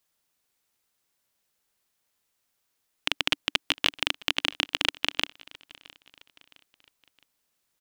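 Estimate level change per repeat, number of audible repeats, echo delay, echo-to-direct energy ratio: -7.5 dB, 2, 0.664 s, -22.0 dB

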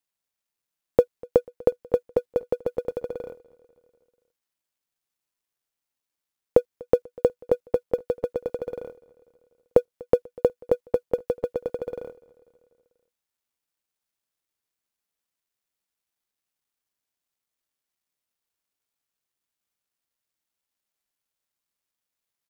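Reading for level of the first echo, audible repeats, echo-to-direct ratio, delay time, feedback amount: -24.0 dB, 3, -22.0 dB, 0.245 s, 59%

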